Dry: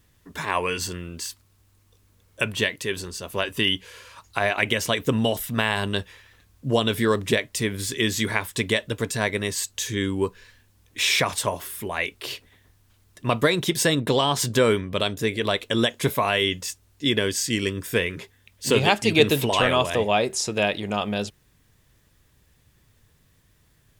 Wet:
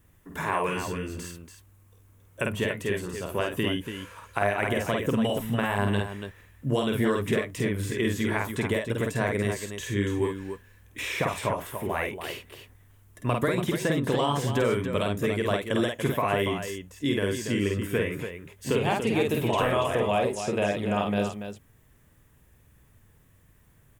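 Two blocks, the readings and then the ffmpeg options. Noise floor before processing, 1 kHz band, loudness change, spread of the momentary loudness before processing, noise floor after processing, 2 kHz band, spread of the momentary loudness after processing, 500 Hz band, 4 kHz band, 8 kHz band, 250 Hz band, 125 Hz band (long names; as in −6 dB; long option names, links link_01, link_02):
−62 dBFS, −2.5 dB, −4.0 dB, 12 LU, −59 dBFS, −5.5 dB, 11 LU, −2.5 dB, −11.0 dB, −10.5 dB, −1.0 dB, −0.5 dB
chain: -filter_complex "[0:a]equalizer=frequency=4500:width=1.2:gain=-12.5,acrossover=split=1600|4900[link_01][link_02][link_03];[link_01]acompressor=threshold=-24dB:ratio=4[link_04];[link_02]acompressor=threshold=-37dB:ratio=4[link_05];[link_03]acompressor=threshold=-47dB:ratio=4[link_06];[link_04][link_05][link_06]amix=inputs=3:normalize=0,asplit=2[link_07][link_08];[link_08]aecho=0:1:49.56|285.7:0.708|0.398[link_09];[link_07][link_09]amix=inputs=2:normalize=0"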